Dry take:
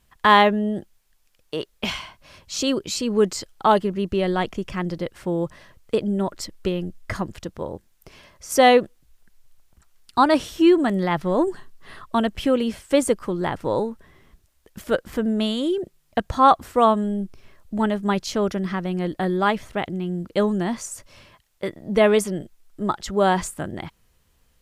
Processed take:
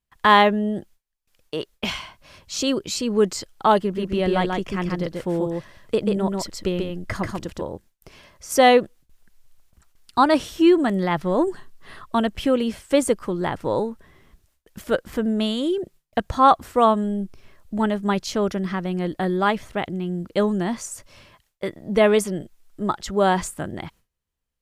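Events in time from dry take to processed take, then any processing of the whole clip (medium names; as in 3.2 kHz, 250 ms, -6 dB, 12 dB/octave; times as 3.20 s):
3.81–7.64 s: delay 138 ms -3.5 dB
whole clip: gate with hold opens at -49 dBFS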